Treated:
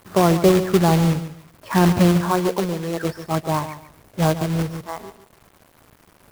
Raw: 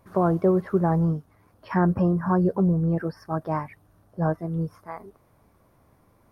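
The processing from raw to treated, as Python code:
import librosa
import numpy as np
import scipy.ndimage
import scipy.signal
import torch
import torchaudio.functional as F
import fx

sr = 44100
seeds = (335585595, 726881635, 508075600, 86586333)

y = fx.highpass(x, sr, hz=320.0, slope=12, at=(2.22, 3.04))
y = fx.quant_companded(y, sr, bits=4)
y = fx.echo_feedback(y, sr, ms=143, feedback_pct=22, wet_db=-12.0)
y = fx.band_squash(y, sr, depth_pct=100, at=(4.41, 4.81))
y = F.gain(torch.from_numpy(y), 5.0).numpy()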